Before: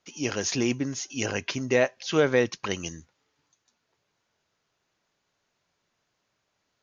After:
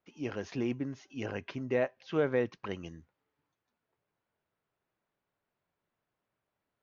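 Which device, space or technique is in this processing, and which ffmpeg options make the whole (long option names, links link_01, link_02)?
phone in a pocket: -af "lowpass=3400,highshelf=frequency=2400:gain=-10,volume=-6.5dB"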